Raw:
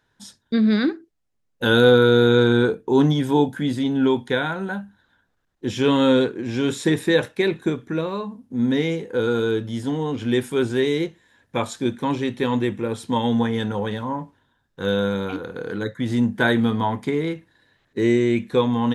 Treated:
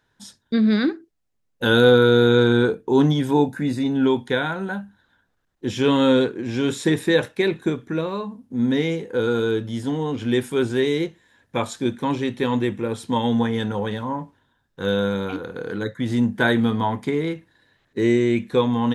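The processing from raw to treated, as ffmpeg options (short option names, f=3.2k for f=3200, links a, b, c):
-filter_complex "[0:a]asettb=1/sr,asplit=3[a][b][c];[a]atrim=end=3.314[d];[b]atrim=start=3.31:end=3.94,asetpts=PTS-STARTPTS,afade=t=in:d=0.004:c=qsin,afade=t=out:st=0.626:d=0.004:c=qsin,asuperstop=centerf=3200:order=8:qfactor=5.7[e];[c]atrim=start=3.936[f];[d][e]acrossfade=d=0.004:c1=hsin:c2=qsin[g];[g][f]acrossfade=d=0.004:c1=qsin:c2=hsin"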